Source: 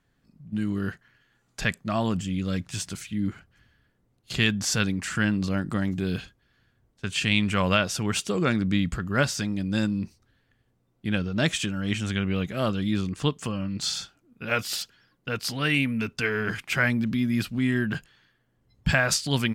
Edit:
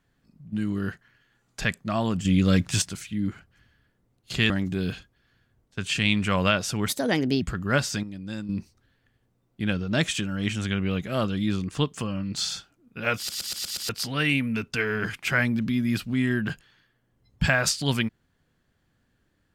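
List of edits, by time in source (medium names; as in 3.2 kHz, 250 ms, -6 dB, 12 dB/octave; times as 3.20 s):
2.25–2.82 s: gain +8 dB
4.50–5.76 s: delete
8.14–8.87 s: speed 135%
9.48–9.94 s: gain -9 dB
14.62 s: stutter in place 0.12 s, 6 plays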